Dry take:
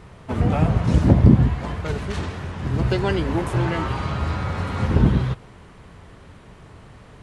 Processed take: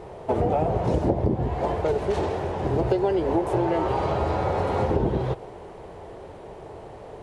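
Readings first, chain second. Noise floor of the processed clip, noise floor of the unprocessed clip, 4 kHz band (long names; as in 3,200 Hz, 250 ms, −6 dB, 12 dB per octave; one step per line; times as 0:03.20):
−42 dBFS, −46 dBFS, −7.0 dB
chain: flat-topped bell 550 Hz +14 dB
downward compressor 6 to 1, threshold −17 dBFS, peak gain reduction 13 dB
level −2.5 dB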